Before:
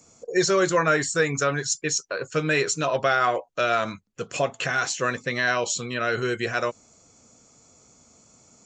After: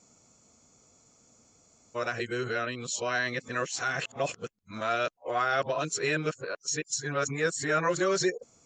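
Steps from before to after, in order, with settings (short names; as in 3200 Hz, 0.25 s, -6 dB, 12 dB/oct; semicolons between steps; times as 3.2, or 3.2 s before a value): whole clip reversed; gain -6 dB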